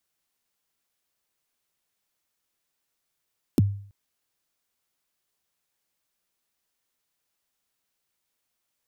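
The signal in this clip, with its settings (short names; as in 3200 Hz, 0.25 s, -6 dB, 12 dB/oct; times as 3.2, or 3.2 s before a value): kick drum length 0.33 s, from 370 Hz, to 100 Hz, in 24 ms, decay 0.52 s, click on, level -12.5 dB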